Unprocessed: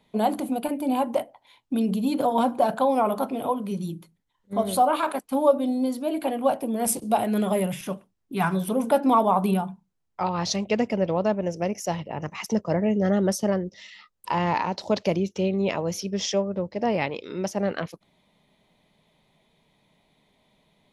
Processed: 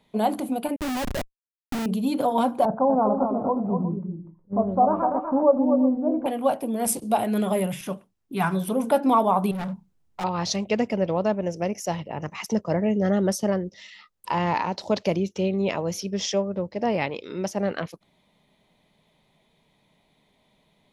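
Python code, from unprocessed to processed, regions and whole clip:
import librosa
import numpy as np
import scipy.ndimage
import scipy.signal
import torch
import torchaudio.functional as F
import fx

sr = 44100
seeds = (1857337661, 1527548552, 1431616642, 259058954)

y = fx.chain(x, sr, fx.lowpass(hz=4500.0, slope=24),
    fx.schmitt(flips_db=-27.5), at=(0.76, 1.86))
y = fx.chain(y, sr, fx.lowpass(hz=1100.0, slope=24),
    fx.low_shelf(hz=170.0, db=9.0),
    fx.echo_multitap(ms=(244, 362), db=(-6.5, -15.5)), at=(2.65, 6.26))
y = fx.chain(y, sr, fx.low_shelf(hz=440.0, db=8.0),
    fx.over_compress(threshold_db=-22.0, ratio=-1.0),
    fx.overload_stage(gain_db=28.0), at=(9.51, 10.24))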